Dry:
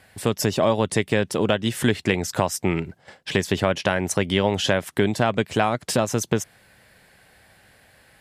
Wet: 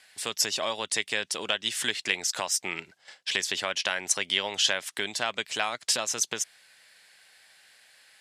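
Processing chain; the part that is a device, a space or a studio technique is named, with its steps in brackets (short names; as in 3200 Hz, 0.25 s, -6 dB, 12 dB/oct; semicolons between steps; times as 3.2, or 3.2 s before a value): piezo pickup straight into a mixer (LPF 5800 Hz 12 dB/oct; differentiator); gain +9 dB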